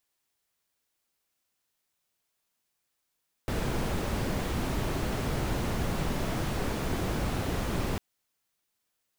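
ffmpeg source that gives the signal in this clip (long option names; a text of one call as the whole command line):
ffmpeg -f lavfi -i "anoisesrc=color=brown:amplitude=0.157:duration=4.5:sample_rate=44100:seed=1" out.wav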